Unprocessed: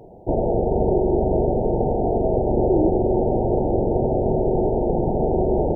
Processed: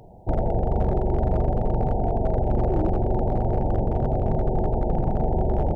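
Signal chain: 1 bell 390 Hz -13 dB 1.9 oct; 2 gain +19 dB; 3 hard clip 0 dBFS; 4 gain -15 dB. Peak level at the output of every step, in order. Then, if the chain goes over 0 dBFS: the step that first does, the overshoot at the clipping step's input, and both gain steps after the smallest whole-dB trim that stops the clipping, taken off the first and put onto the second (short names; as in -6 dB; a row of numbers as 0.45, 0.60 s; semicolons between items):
-13.5, +5.5, 0.0, -15.0 dBFS; step 2, 5.5 dB; step 2 +13 dB, step 4 -9 dB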